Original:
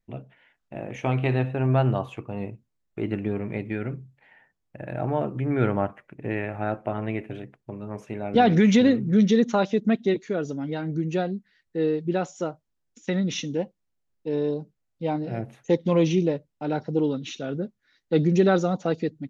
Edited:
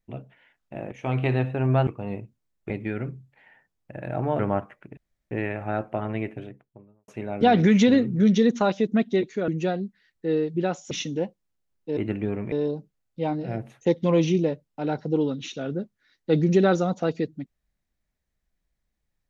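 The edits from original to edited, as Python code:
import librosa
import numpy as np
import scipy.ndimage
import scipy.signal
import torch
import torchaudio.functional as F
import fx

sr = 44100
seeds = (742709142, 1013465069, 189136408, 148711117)

y = fx.studio_fade_out(x, sr, start_s=7.11, length_s=0.9)
y = fx.edit(y, sr, fx.fade_in_from(start_s=0.92, length_s=0.25, floor_db=-13.0),
    fx.cut(start_s=1.87, length_s=0.3),
    fx.move(start_s=3.0, length_s=0.55, to_s=14.35),
    fx.cut(start_s=5.24, length_s=0.42),
    fx.insert_room_tone(at_s=6.24, length_s=0.34),
    fx.cut(start_s=10.41, length_s=0.58),
    fx.cut(start_s=12.42, length_s=0.87), tone=tone)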